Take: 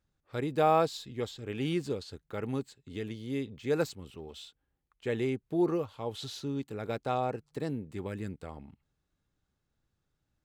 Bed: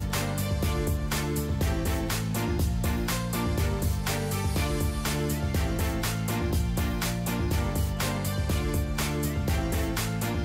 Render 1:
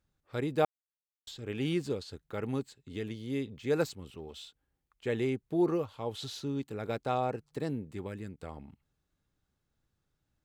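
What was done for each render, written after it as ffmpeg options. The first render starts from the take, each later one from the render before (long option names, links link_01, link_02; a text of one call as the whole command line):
ffmpeg -i in.wav -filter_complex "[0:a]asplit=4[link_01][link_02][link_03][link_04];[link_01]atrim=end=0.65,asetpts=PTS-STARTPTS,afade=type=out:start_time=0.646:duration=0.004:curve=hsin[link_05];[link_02]atrim=start=0.65:end=1.27,asetpts=PTS-STARTPTS,volume=0[link_06];[link_03]atrim=start=1.27:end=8.38,asetpts=PTS-STARTPTS,afade=type=in:duration=0.004:curve=hsin,afade=type=out:start_time=6.54:duration=0.57:silence=0.501187[link_07];[link_04]atrim=start=8.38,asetpts=PTS-STARTPTS,afade=type=in:duration=0.004:curve=hsin:silence=0.501187[link_08];[link_05][link_06][link_07][link_08]concat=n=4:v=0:a=1" out.wav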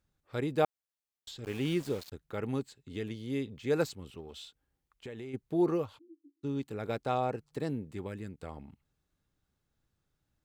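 ffmpeg -i in.wav -filter_complex "[0:a]asettb=1/sr,asplit=3[link_01][link_02][link_03];[link_01]atrim=end=1.444[link_04];[link_02]atrim=start=1.44:end=2.12,asetpts=PTS-STARTPTS,afade=type=in:duration=0.004:curve=qsin,afade=type=out:start_time=0.676:duration=0.004:curve=qsin,aeval=exprs='val(0)*gte(abs(val(0)),0.00708)':channel_layout=same[link_05];[link_03]atrim=start=2.116[link_06];[link_04][link_05]acrossfade=duration=0.004:curve1=hsin:curve2=qsin[link_07];[link_07][link_06]acrossfade=duration=0.004:curve1=qsin:curve2=hsin,asplit=3[link_08][link_09][link_10];[link_08]afade=type=out:start_time=4.2:duration=0.02[link_11];[link_09]acompressor=threshold=-40dB:ratio=6:attack=3.2:release=140:knee=1:detection=peak,afade=type=in:start_time=4.2:duration=0.02,afade=type=out:start_time=5.33:duration=0.02[link_12];[link_10]afade=type=in:start_time=5.33:duration=0.02[link_13];[link_11][link_12][link_13]amix=inputs=3:normalize=0,asplit=3[link_14][link_15][link_16];[link_14]afade=type=out:start_time=5.97:duration=0.02[link_17];[link_15]asuperpass=centerf=310:order=8:qfactor=5.6,afade=type=in:start_time=5.97:duration=0.02,afade=type=out:start_time=6.43:duration=0.02[link_18];[link_16]afade=type=in:start_time=6.43:duration=0.02[link_19];[link_17][link_18][link_19]amix=inputs=3:normalize=0" out.wav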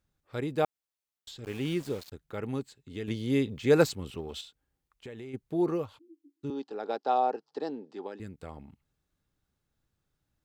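ffmpeg -i in.wav -filter_complex "[0:a]asettb=1/sr,asplit=3[link_01][link_02][link_03];[link_01]atrim=end=6.504[link_04];[link_02]atrim=start=6.5:end=8.2,asetpts=PTS-STARTPTS,afade=type=in:duration=0.004:curve=qsin,afade=type=out:start_time=1.696:duration=0.004:curve=qsin,highpass=frequency=260:width=0.5412,highpass=frequency=260:width=1.3066,equalizer=frequency=420:width_type=q:width=4:gain=3,equalizer=frequency=810:width_type=q:width=4:gain=10,equalizer=frequency=2200:width_type=q:width=4:gain=-10,equalizer=frequency=5000:width_type=q:width=4:gain=7,lowpass=frequency=5600:width=0.5412,lowpass=frequency=5600:width=1.3066[link_05];[link_03]atrim=start=8.196[link_06];[link_04][link_05]acrossfade=duration=0.004:curve1=hsin:curve2=qsin[link_07];[link_07][link_06]acrossfade=duration=0.004:curve1=qsin:curve2=hsin,asplit=3[link_08][link_09][link_10];[link_08]atrim=end=3.082[link_11];[link_09]atrim=start=3.078:end=4.412,asetpts=PTS-STARTPTS,volume=7.5dB[link_12];[link_10]atrim=start=4.408[link_13];[link_11][link_12]acrossfade=duration=0.004:curve1=hsin:curve2=hsin[link_14];[link_14][link_13]acrossfade=duration=0.004:curve1=hsin:curve2=hsin" out.wav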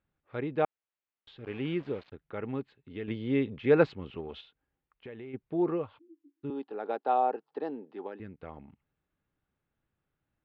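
ffmpeg -i in.wav -af "lowpass=frequency=2900:width=0.5412,lowpass=frequency=2900:width=1.3066,lowshelf=frequency=110:gain=-7.5" out.wav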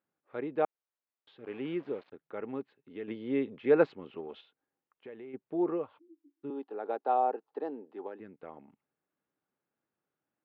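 ffmpeg -i in.wav -af "highpass=270,highshelf=frequency=2200:gain=-10" out.wav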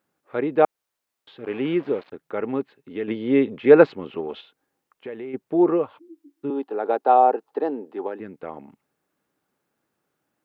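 ffmpeg -i in.wav -af "volume=12dB,alimiter=limit=-1dB:level=0:latency=1" out.wav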